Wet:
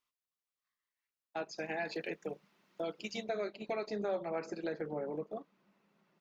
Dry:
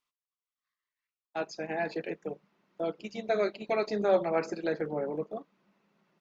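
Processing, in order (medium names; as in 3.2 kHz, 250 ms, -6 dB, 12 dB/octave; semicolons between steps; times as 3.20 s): 1.58–3.24 s: treble shelf 2 kHz +10 dB; compression 2.5:1, threshold -34 dBFS, peak gain reduction 10 dB; trim -2 dB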